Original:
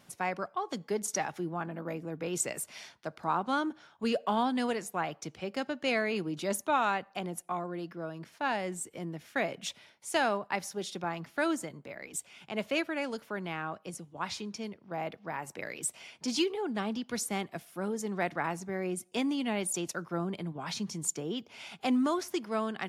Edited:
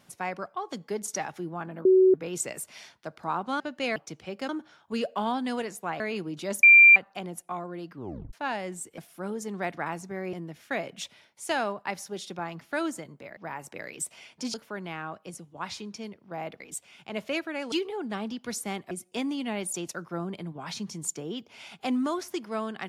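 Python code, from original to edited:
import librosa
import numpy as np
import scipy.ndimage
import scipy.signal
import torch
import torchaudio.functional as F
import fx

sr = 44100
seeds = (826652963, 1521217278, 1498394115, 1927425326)

y = fx.edit(x, sr, fx.bleep(start_s=1.85, length_s=0.29, hz=375.0, db=-14.5),
    fx.swap(start_s=3.6, length_s=1.51, other_s=5.64, other_length_s=0.36),
    fx.bleep(start_s=6.63, length_s=0.33, hz=2370.0, db=-10.0),
    fx.tape_stop(start_s=7.9, length_s=0.43),
    fx.swap(start_s=12.02, length_s=1.12, other_s=15.2, other_length_s=1.17),
    fx.move(start_s=17.56, length_s=1.35, to_s=8.98), tone=tone)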